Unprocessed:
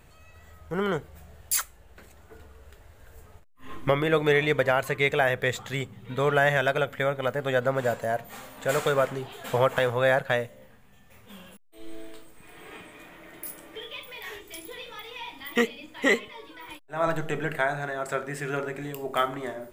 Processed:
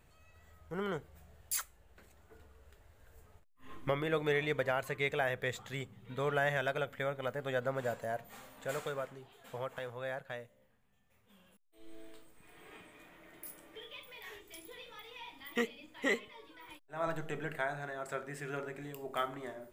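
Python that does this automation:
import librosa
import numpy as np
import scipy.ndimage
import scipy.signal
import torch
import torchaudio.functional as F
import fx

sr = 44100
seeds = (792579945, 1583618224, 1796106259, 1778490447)

y = fx.gain(x, sr, db=fx.line((8.52, -10.0), (9.17, -18.0), (11.36, -18.0), (12.09, -10.0)))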